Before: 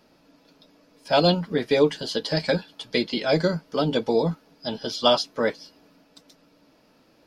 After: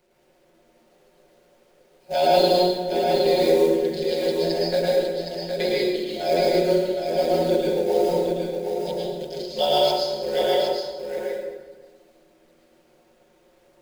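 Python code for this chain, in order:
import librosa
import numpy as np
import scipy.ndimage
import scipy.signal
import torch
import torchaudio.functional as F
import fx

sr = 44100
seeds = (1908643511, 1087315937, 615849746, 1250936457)

y = fx.wiener(x, sr, points=25)
y = fx.notch(y, sr, hz=5700.0, q=5.8)
y = fx.dynamic_eq(y, sr, hz=3000.0, q=2.7, threshold_db=-42.0, ratio=4.0, max_db=-6)
y = fx.fixed_phaser(y, sr, hz=490.0, stages=4)
y = fx.stretch_grains(y, sr, factor=1.9, grain_ms=23.0)
y = fx.quant_companded(y, sr, bits=6)
y = y + 10.0 ** (-5.5 / 20.0) * np.pad(y, (int(765 * sr / 1000.0), 0))[:len(y)]
y = fx.rev_plate(y, sr, seeds[0], rt60_s=1.3, hf_ratio=0.7, predelay_ms=95, drr_db=-5.0)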